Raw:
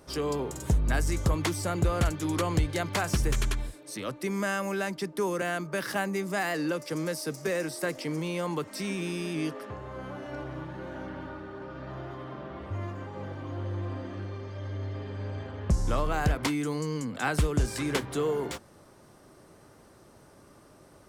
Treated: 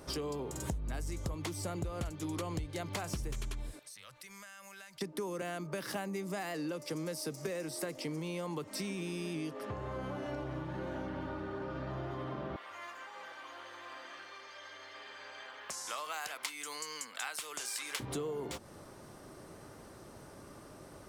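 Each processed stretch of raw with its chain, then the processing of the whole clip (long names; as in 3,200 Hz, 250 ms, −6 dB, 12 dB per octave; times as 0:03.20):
0:03.79–0:05.01: guitar amp tone stack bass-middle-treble 10-0-10 + downward compressor 12 to 1, threshold −50 dBFS
0:12.56–0:18.00: high-pass filter 1,300 Hz + high-shelf EQ 8,900 Hz +4 dB
whole clip: dynamic equaliser 1,600 Hz, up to −5 dB, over −49 dBFS, Q 2.1; downward compressor 6 to 1, threshold −39 dBFS; level +3 dB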